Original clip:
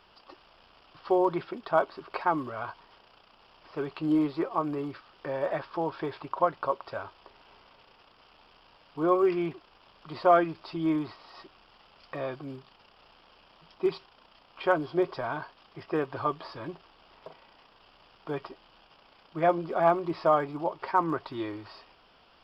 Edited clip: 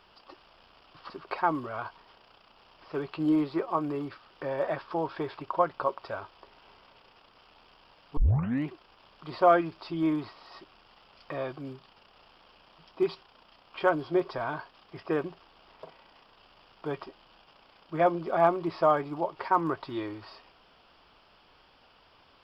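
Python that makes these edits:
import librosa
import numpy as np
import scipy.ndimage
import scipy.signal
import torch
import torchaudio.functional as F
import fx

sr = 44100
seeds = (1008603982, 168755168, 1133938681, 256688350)

y = fx.edit(x, sr, fx.cut(start_s=1.1, length_s=0.83),
    fx.tape_start(start_s=9.0, length_s=0.51),
    fx.cut(start_s=16.07, length_s=0.6), tone=tone)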